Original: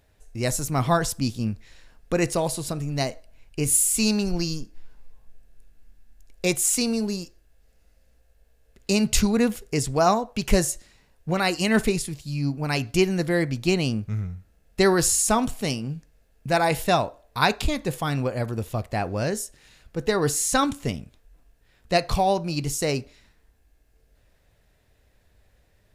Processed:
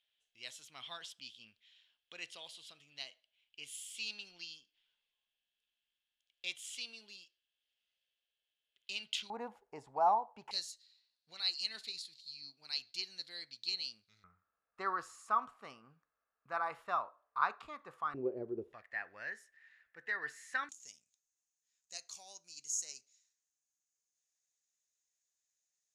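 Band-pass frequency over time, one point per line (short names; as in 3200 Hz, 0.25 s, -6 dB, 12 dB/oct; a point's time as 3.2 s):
band-pass, Q 8.5
3200 Hz
from 9.3 s 870 Hz
from 10.51 s 4200 Hz
from 14.24 s 1200 Hz
from 18.14 s 380 Hz
from 18.73 s 1800 Hz
from 20.69 s 6600 Hz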